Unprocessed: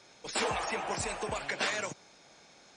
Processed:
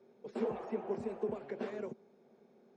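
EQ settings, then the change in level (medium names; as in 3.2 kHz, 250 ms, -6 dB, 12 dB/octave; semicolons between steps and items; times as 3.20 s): two resonant band-passes 300 Hz, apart 0.74 oct; +7.5 dB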